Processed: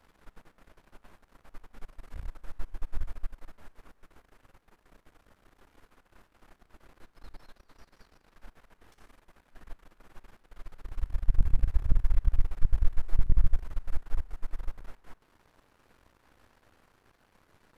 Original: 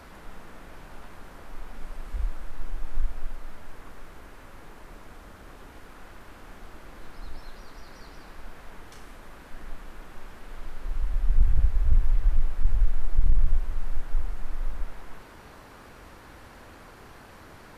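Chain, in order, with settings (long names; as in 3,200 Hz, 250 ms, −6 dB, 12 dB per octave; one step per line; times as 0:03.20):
gain on one half-wave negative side −12 dB
power curve on the samples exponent 1.4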